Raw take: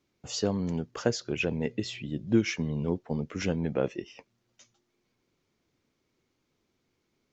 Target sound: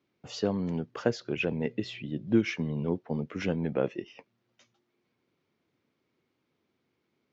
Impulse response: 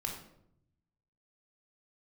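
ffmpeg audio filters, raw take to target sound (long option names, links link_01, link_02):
-af "highpass=110,lowpass=3700"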